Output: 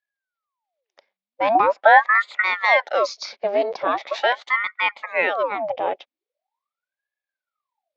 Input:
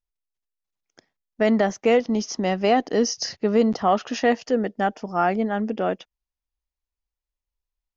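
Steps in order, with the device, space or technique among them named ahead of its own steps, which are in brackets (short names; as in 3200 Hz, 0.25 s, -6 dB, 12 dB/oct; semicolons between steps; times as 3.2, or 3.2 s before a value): 1.55–2.42 tilt shelf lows +8.5 dB, about 1100 Hz; voice changer toy (ring modulator with a swept carrier 940 Hz, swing 80%, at 0.42 Hz; speaker cabinet 500–5000 Hz, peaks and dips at 570 Hz +10 dB, 800 Hz +4 dB, 1500 Hz -4 dB, 2200 Hz +6 dB, 3600 Hz +4 dB); gain +1 dB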